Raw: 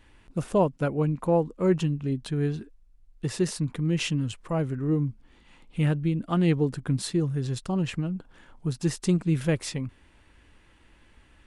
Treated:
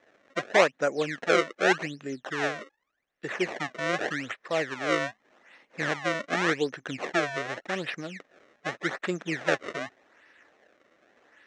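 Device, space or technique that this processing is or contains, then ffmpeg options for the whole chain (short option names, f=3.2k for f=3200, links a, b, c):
circuit-bent sampling toy: -af "acrusher=samples=30:mix=1:aa=0.000001:lfo=1:lforange=48:lforate=0.85,highpass=480,equalizer=f=590:t=q:w=4:g=3,equalizer=f=940:t=q:w=4:g=-6,equalizer=f=1.8k:t=q:w=4:g=8,equalizer=f=3.2k:t=q:w=4:g=-3,equalizer=f=4.7k:t=q:w=4:g=-9,lowpass=f=5.9k:w=0.5412,lowpass=f=5.9k:w=1.3066,volume=3.5dB"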